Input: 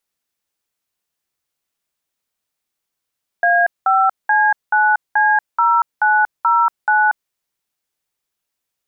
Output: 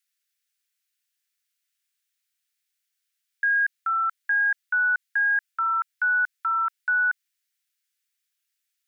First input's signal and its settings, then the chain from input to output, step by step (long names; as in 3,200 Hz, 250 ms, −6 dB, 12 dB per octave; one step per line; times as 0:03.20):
touch tones "A5C9C0909", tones 235 ms, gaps 196 ms, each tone −13.5 dBFS
Butterworth high-pass 1,500 Hz 36 dB per octave
brickwall limiter −18 dBFS